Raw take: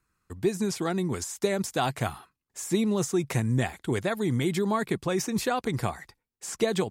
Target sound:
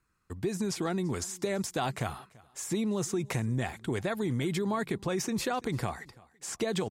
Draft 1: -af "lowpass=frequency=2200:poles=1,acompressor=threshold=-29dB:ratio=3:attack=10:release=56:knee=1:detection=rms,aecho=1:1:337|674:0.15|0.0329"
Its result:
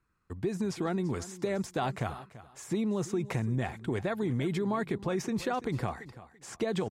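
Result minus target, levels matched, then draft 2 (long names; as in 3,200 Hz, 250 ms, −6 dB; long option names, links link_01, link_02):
8,000 Hz band −7.5 dB; echo-to-direct +7 dB
-af "lowpass=frequency=8600:poles=1,acompressor=threshold=-29dB:ratio=3:attack=10:release=56:knee=1:detection=rms,aecho=1:1:337|674:0.0668|0.0147"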